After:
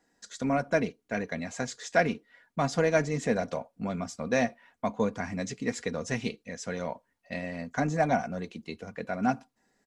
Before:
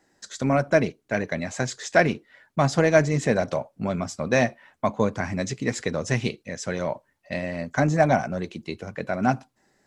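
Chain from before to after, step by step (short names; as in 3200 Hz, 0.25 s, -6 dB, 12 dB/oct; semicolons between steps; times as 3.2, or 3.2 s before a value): comb 4.2 ms, depth 44%; gain -6.5 dB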